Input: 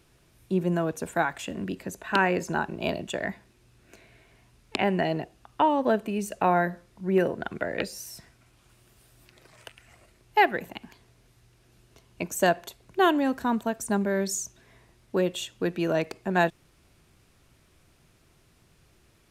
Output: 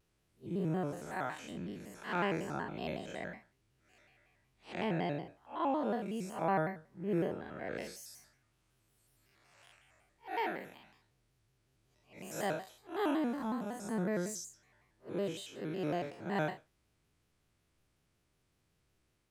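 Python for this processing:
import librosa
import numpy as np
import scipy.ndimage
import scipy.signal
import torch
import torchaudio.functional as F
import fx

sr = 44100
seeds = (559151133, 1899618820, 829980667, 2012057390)

y = fx.spec_blur(x, sr, span_ms=151.0)
y = fx.noise_reduce_blind(y, sr, reduce_db=7)
y = fx.vibrato_shape(y, sr, shape='square', rate_hz=5.4, depth_cents=160.0)
y = F.gain(torch.from_numpy(y), -7.0).numpy()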